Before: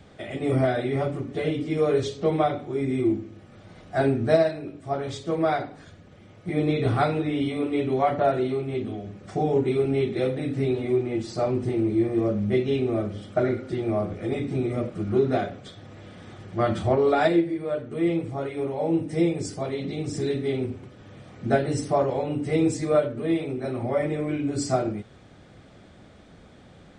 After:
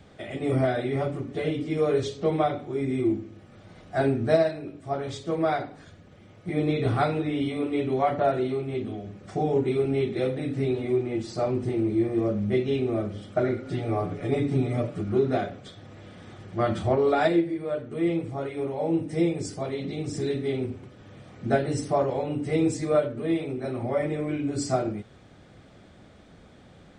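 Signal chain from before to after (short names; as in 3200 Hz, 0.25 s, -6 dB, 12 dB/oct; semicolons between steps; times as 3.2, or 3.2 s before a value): 13.65–15.01 comb 7 ms, depth 95%; gain -1.5 dB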